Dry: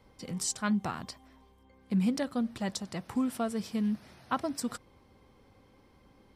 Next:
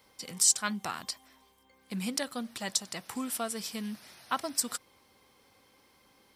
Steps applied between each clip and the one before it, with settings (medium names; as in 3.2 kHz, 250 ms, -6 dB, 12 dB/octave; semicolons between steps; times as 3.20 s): tilt EQ +3.5 dB/octave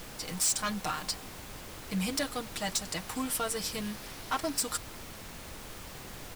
comb 6.5 ms, depth 72%; added noise pink -46 dBFS; hard clipper -26.5 dBFS, distortion -6 dB; trim +1.5 dB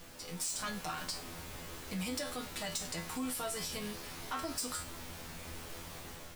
level rider gain up to 6 dB; feedback comb 84 Hz, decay 0.27 s, harmonics all, mix 90%; peak limiter -29.5 dBFS, peak gain reduction 7.5 dB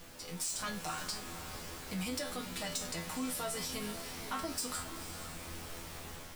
echo that smears into a reverb 479 ms, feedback 49%, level -10.5 dB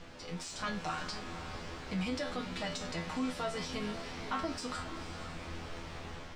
distance through air 140 m; trim +3.5 dB